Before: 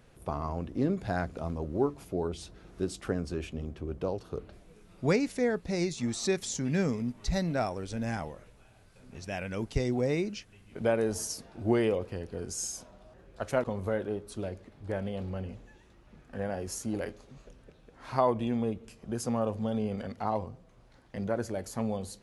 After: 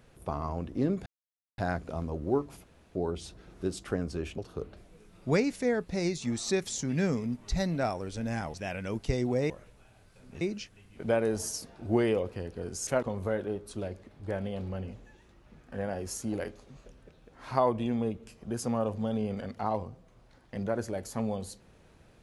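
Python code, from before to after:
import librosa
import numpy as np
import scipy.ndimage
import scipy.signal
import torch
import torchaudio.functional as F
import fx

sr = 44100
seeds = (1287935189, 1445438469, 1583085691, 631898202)

y = fx.edit(x, sr, fx.insert_silence(at_s=1.06, length_s=0.52),
    fx.insert_room_tone(at_s=2.12, length_s=0.31),
    fx.cut(start_s=3.55, length_s=0.59),
    fx.move(start_s=8.3, length_s=0.91, to_s=10.17),
    fx.cut(start_s=12.63, length_s=0.85), tone=tone)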